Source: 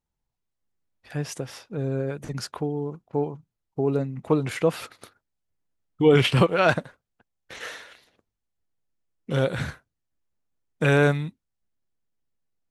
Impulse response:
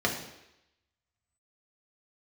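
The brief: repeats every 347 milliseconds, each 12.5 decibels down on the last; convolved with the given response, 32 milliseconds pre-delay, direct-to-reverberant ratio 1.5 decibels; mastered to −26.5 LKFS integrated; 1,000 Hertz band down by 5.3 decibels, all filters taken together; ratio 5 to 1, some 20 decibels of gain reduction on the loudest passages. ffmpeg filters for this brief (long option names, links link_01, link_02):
-filter_complex "[0:a]equalizer=frequency=1000:width_type=o:gain=-8,acompressor=threshold=-37dB:ratio=5,aecho=1:1:347|694|1041:0.237|0.0569|0.0137,asplit=2[link_01][link_02];[1:a]atrim=start_sample=2205,adelay=32[link_03];[link_02][link_03]afir=irnorm=-1:irlink=0,volume=-12.5dB[link_04];[link_01][link_04]amix=inputs=2:normalize=0,volume=12dB"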